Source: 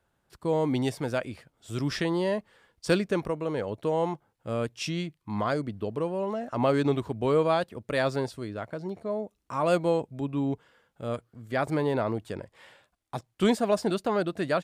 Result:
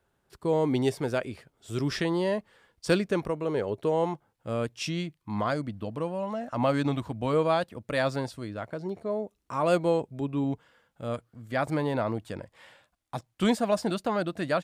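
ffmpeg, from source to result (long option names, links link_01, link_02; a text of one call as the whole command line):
ffmpeg -i in.wav -af "asetnsamples=nb_out_samples=441:pad=0,asendcmd='2 equalizer g 0;3.44 equalizer g 8;4.04 equalizer g -2;5.5 equalizer g -14;7.33 equalizer g -7.5;8.63 equalizer g 2.5;10.44 equalizer g -8',equalizer=frequency=400:width_type=o:width=0.22:gain=6.5" out.wav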